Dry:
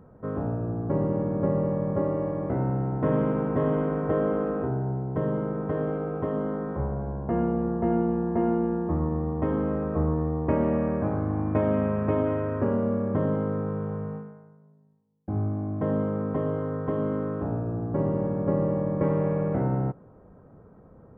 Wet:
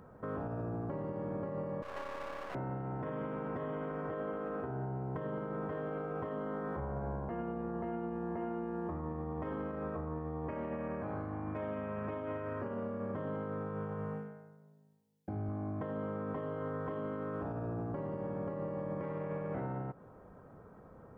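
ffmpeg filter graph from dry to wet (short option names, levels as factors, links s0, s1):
-filter_complex "[0:a]asettb=1/sr,asplit=3[s0][s1][s2];[s0]atrim=end=1.824[s3];[s1]atrim=start=1.82:end=2.55,asetpts=PTS-STARTPTS,afade=t=in:d=0.004:c=qsin,afade=t=out:st=0.726:d=0.004:c=qsin,highpass=640,aeval=exprs='max(val(0),0)':c=same[s4];[s2]atrim=start=2.546[s5];[s3][s4]acrossfade=d=0.004:c1=hsin:c2=qsin[s6];[s6][s5]acrossfade=d=0.004:c1=qsin:c2=hsin,asettb=1/sr,asplit=3[s7][s8][s9];[s7]atrim=end=14.144[s10];[s8]atrim=start=14.14:end=15.49,asetpts=PTS-STARTPTS,afade=t=in:d=0.004:c=qsin,afade=t=out:st=1.346:d=0.004:c=qsin,highpass=56,equalizer=f=1100:w=3.2:g=-8[s11];[s9]atrim=start=15.486[s12];[s10][s11]acrossfade=d=0.004:c1=hsin:c2=qsin[s13];[s13][s12]acrossfade=d=0.004:c1=qsin:c2=hsin,tiltshelf=f=730:g=-5.5,acompressor=threshold=0.0224:ratio=6,alimiter=level_in=2.11:limit=0.0631:level=0:latency=1:release=55,volume=0.473"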